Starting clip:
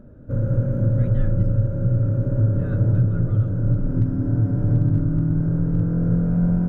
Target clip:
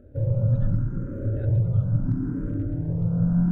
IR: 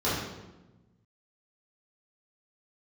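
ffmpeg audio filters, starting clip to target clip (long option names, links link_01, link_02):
-filter_complex "[0:a]atempo=1.9,asplit=2[link_01][link_02];[link_02]afreqshift=0.75[link_03];[link_01][link_03]amix=inputs=2:normalize=1,volume=-1dB"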